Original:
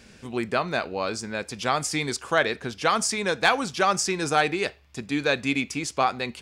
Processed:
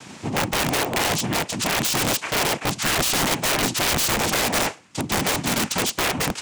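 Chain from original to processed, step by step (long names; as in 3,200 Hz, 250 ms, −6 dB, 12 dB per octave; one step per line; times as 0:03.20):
in parallel at +1 dB: compressor whose output falls as the input rises −27 dBFS, ratio −0.5
on the sum: soft clipping −17 dBFS, distortion −13 dB
cochlear-implant simulation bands 4
wrap-around overflow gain 17.5 dB
level +2.5 dB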